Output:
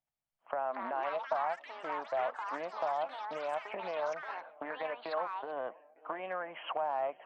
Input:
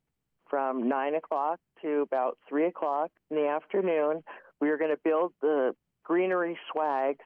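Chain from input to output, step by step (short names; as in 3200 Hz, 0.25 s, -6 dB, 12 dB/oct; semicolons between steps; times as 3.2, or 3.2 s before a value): compressor 4:1, threshold -35 dBFS, peak gain reduction 11 dB; resonant low shelf 510 Hz -8 dB, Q 3; swung echo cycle 0.905 s, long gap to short 1.5:1, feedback 63%, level -24 dB; spectral noise reduction 10 dB; echoes that change speed 0.391 s, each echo +6 st, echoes 3, each echo -6 dB; Doppler distortion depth 0.12 ms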